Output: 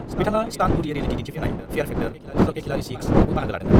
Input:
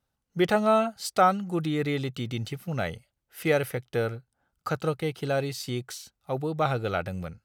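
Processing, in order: wind noise 340 Hz -23 dBFS; reverse echo 0.828 s -13 dB; granular stretch 0.51×, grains 47 ms; gain +1.5 dB

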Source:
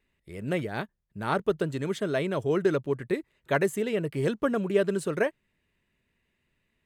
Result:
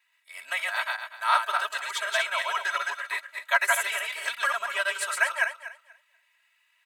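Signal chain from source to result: regenerating reverse delay 0.121 s, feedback 43%, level -1.5 dB; inverse Chebyshev high-pass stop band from 360 Hz, stop band 50 dB; comb 3.1 ms, depth 95%; gain +5.5 dB

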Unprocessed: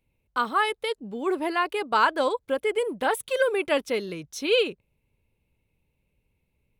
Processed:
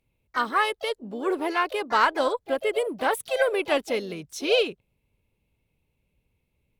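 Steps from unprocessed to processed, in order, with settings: added harmonics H 2 -23 dB, 4 -42 dB, 7 -43 dB, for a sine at -8 dBFS; harmoniser +4 st -12 dB, +7 st -17 dB

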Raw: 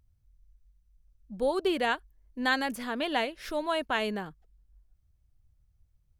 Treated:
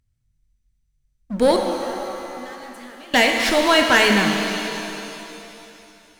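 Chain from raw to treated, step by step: graphic EQ 125/250/2000/4000/8000 Hz +5/+3/+8/+5/+9 dB; sample leveller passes 3; 1.56–3.14 compressor 12:1, threshold -43 dBFS, peak gain reduction 30.5 dB; shimmer reverb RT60 2.9 s, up +7 st, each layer -8 dB, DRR 2.5 dB

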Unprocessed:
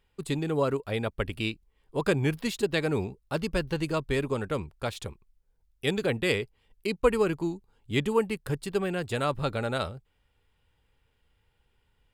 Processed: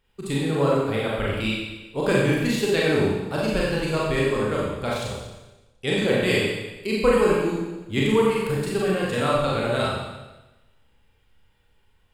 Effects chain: 4.97–5.96 LPF 9900 Hz 24 dB/oct; Schroeder reverb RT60 1.1 s, combs from 29 ms, DRR -5.5 dB

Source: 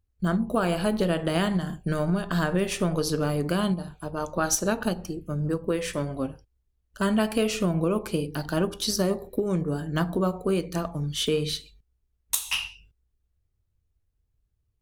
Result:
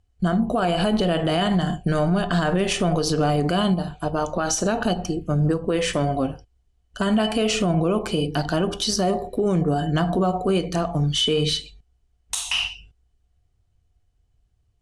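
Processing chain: LPF 9200 Hz 24 dB/oct; small resonant body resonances 720/3000 Hz, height 15 dB, ringing for 0.1 s; limiter -21 dBFS, peak gain reduction 11.5 dB; gain +8 dB

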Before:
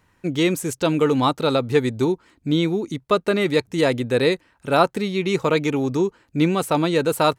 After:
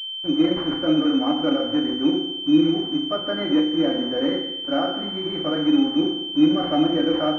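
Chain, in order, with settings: HPF 130 Hz 12 dB/oct; limiter -10 dBFS, peak gain reduction 7 dB; fixed phaser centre 650 Hz, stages 8; notch comb 220 Hz; bit-crush 7-bit; FDN reverb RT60 0.9 s, low-frequency decay 0.95×, high-frequency decay 1×, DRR -2 dB; pulse-width modulation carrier 3100 Hz; gain -1 dB

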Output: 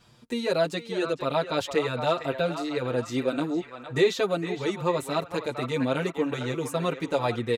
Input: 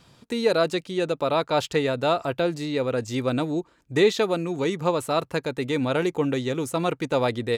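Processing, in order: narrowing echo 0.458 s, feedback 52%, band-pass 1500 Hz, level -7 dB; endless flanger 6.5 ms +1.1 Hz

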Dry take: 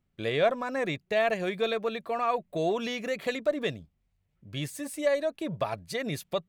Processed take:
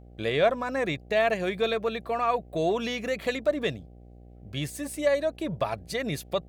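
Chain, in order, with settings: buzz 60 Hz, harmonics 13, -51 dBFS -6 dB/oct; gain +2 dB

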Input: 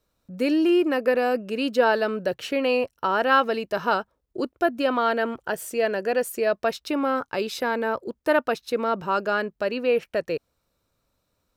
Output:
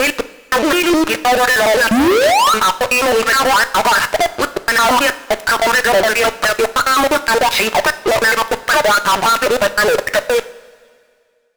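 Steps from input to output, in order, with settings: slices in reverse order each 0.104 s, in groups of 5; HPF 64 Hz 24 dB/oct; in parallel at -2.5 dB: limiter -19 dBFS, peak gain reduction 12 dB; on the sum: compressor, threshold -19 dBFS, peak gain reduction 7.5 dB; wah 2.8 Hz 680–2100 Hz, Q 4.1; painted sound rise, 1.91–2.54, 210–1400 Hz -27 dBFS; fuzz box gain 55 dB, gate -48 dBFS; on a send at -11 dB: reverb, pre-delay 3 ms; on the sum: gain +2.5 dB

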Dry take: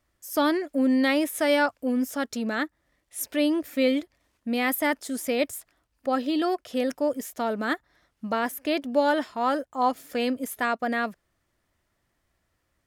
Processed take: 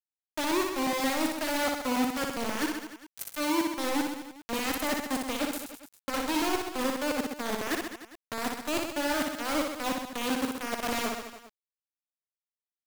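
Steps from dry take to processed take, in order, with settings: dynamic EQ 310 Hz, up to +6 dB, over -37 dBFS, Q 1.7; reverse; compressor 12:1, threshold -30 dBFS, peak gain reduction 16 dB; reverse; bit-crush 5-bit; reverse bouncing-ball echo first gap 60 ms, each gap 1.15×, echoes 5

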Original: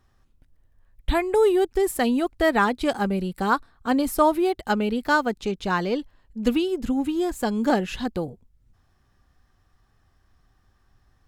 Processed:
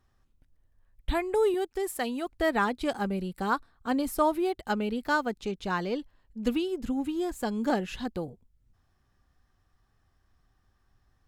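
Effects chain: 1.54–2.27 low shelf 280 Hz -10 dB; gain -6 dB

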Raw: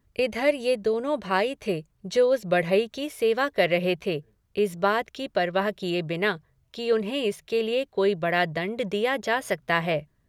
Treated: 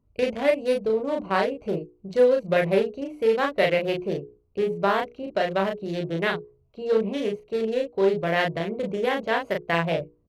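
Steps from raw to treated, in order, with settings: Wiener smoothing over 25 samples; notches 60/120/180/240/300/360/420/480 Hz; doubler 36 ms -3 dB; Doppler distortion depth 0.12 ms

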